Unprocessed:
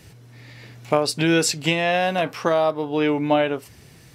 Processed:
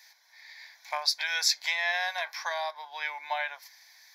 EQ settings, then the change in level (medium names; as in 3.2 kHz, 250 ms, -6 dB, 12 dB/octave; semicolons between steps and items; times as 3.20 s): high-pass 1 kHz 24 dB/octave; peaking EQ 6.3 kHz +2.5 dB; static phaser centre 1.9 kHz, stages 8; 0.0 dB